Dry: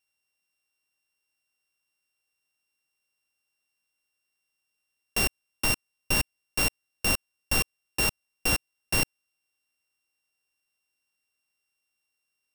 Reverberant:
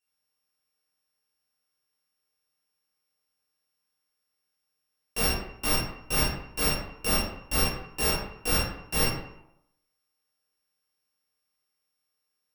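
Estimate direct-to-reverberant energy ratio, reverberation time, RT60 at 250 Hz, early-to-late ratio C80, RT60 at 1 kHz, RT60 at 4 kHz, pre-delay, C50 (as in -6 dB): -10.0 dB, 0.80 s, 0.75 s, 5.0 dB, 0.80 s, 0.45 s, 14 ms, 1.0 dB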